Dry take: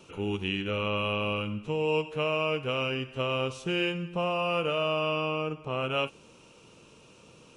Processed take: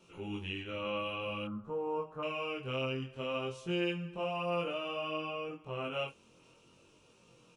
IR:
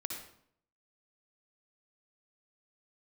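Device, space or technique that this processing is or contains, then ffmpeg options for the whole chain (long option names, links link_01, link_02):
double-tracked vocal: -filter_complex "[0:a]asplit=2[link_01][link_02];[link_02]adelay=23,volume=-3.5dB[link_03];[link_01][link_03]amix=inputs=2:normalize=0,flanger=delay=17:depth=6:speed=0.54,asettb=1/sr,asplit=3[link_04][link_05][link_06];[link_04]atrim=end=1.474[link_07];[link_05]atrim=start=1.47:end=2.23,asetpts=PTS-STARTPTS,afade=type=in:duration=0.004:curve=qsin,afade=type=out:start_time=0.756:duration=0.004:curve=qsin,highshelf=frequency=1800:width_type=q:width=3:gain=-13[link_08];[link_06]atrim=start=2.226[link_09];[link_07][link_08]acrossfade=duration=0.004:curve1=hsin:curve2=qsin[link_10];[link_10][link_09]acrossfade=duration=0.004:curve1=qsin:curve2=hsin,volume=-7dB"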